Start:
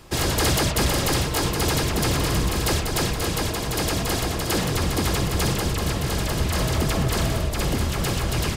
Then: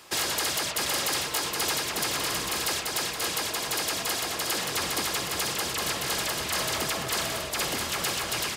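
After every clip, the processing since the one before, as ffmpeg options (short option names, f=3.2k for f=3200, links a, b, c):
-af "highpass=f=1.1k:p=1,alimiter=limit=-19.5dB:level=0:latency=1:release=443,volume=2.5dB"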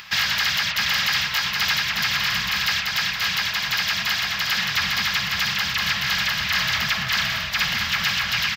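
-af "firequalizer=gain_entry='entry(210,0);entry(300,-25);entry(770,-8);entry(1700,6);entry(5500,-1);entry(9400,-27);entry(14000,-4)':delay=0.05:min_phase=1,acompressor=mode=upward:threshold=-43dB:ratio=2.5,volume=6dB"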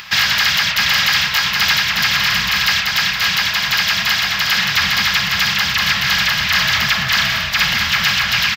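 -filter_complex "[0:a]asplit=2[a][b];[b]adelay=36,volume=-13dB[c];[a][c]amix=inputs=2:normalize=0,volume=6.5dB"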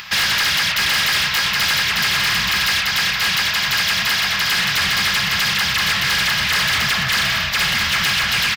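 -af "volume=14.5dB,asoftclip=hard,volume=-14.5dB"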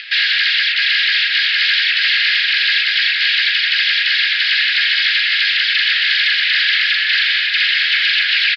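-af "asuperpass=centerf=2700:order=12:qfactor=0.88,aecho=1:1:1192:0.447,volume=4dB"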